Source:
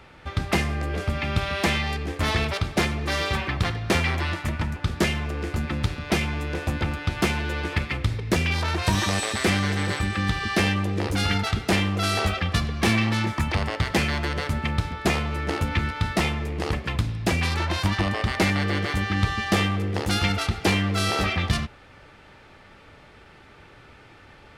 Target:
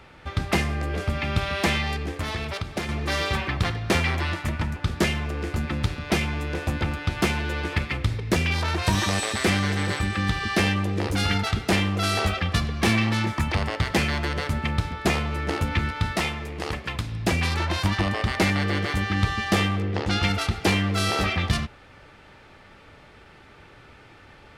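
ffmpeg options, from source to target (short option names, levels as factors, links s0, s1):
-filter_complex "[0:a]asettb=1/sr,asplit=3[s0][s1][s2];[s0]atrim=end=2.084[s3];[s1]atrim=start=2.08:end=2.89,asetpts=PTS-STARTPTS,afade=t=in:d=0.004:c=qsin,afade=t=out:st=0.806:d=0.004:c=qsin,acompressor=threshold=0.0501:ratio=6[s4];[s2]atrim=start=2.886[s5];[s3][s4]acrossfade=d=0.004:c1=hsin:c2=qsin[s6];[s6][s5]acrossfade=d=0.004:c1=qsin:c2=hsin,asettb=1/sr,asplit=3[s7][s8][s9];[s7]atrim=end=16.164[s10];[s8]atrim=start=16.16:end=17.12,asetpts=PTS-STARTPTS,afade=t=in:d=0.004:c=qsin,afade=t=out:st=0.956:d=0.004:c=qsin,lowshelf=f=460:g=-6[s11];[s9]atrim=start=17.116[s12];[s10][s11]acrossfade=d=0.004:c1=hsin:c2=qsin[s13];[s13][s12]acrossfade=d=0.004:c1=qsin:c2=hsin,asettb=1/sr,asplit=3[s14][s15][s16];[s14]atrim=end=19.804[s17];[s15]atrim=start=19.8:end=20.23,asetpts=PTS-STARTPTS,afade=t=in:d=0.004:c=qsin,afade=t=out:st=0.426:d=0.004:c=qsin,lowpass=5000[s18];[s16]atrim=start=20.226[s19];[s17][s18]acrossfade=d=0.004:c1=hsin:c2=qsin[s20];[s20][s19]acrossfade=d=0.004:c1=qsin:c2=hsin"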